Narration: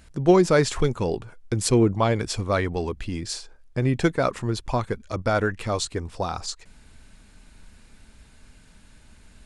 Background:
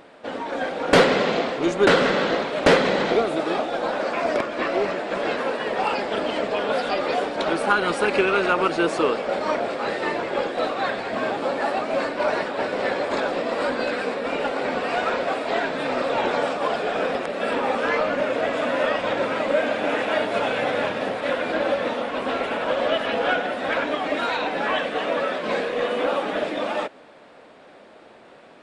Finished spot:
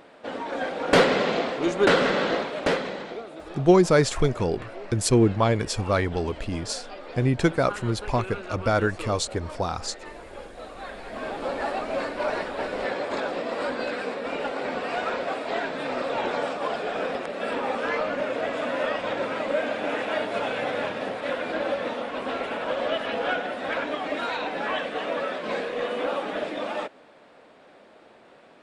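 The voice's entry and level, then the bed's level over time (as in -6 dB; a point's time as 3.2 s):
3.40 s, 0.0 dB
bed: 2.37 s -2.5 dB
3.2 s -16.5 dB
10.63 s -16.5 dB
11.5 s -4.5 dB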